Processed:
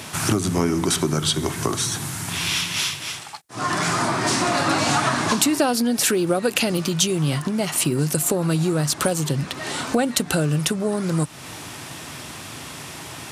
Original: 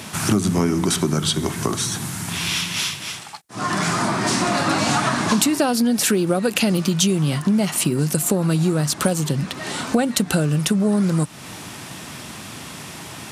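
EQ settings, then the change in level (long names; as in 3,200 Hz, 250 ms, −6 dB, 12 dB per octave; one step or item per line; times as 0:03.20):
parametric band 200 Hz −9 dB 0.34 octaves
0.0 dB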